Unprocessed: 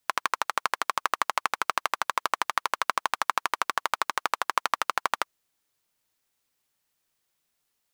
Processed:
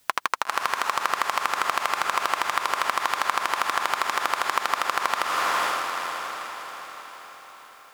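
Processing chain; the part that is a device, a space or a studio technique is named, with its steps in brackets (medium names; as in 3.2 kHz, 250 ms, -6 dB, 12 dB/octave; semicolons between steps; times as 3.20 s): echo that smears into a reverb 483 ms, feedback 52%, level -12 dB; loud club master (compression 2:1, threshold -28 dBFS, peak gain reduction 6.5 dB; hard clipper -10.5 dBFS, distortion -21 dB; loudness maximiser +19.5 dB); trim -3.5 dB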